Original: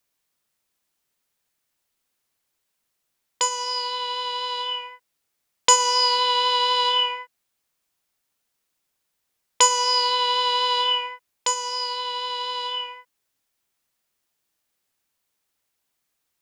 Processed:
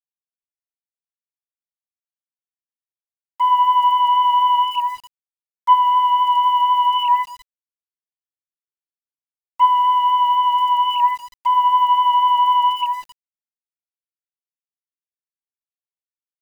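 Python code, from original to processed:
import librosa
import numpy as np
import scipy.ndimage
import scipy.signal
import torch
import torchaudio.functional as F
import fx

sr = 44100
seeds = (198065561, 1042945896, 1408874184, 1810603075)

p1 = fx.sine_speech(x, sr)
p2 = fx.over_compress(p1, sr, threshold_db=-28.0, ratio=-0.5)
p3 = p1 + (p2 * 10.0 ** (3.0 / 20.0))
p4 = scipy.signal.savgol_filter(p3, 65, 4, mode='constant')
p5 = p4 + 10.0 ** (-20.5 / 20.0) * np.pad(p4, (int(198 * sr / 1000.0), 0))[:len(p4)]
p6 = np.where(np.abs(p5) >= 10.0 ** (-44.0 / 20.0), p5, 0.0)
y = p6 * 10.0 ** (7.0 / 20.0)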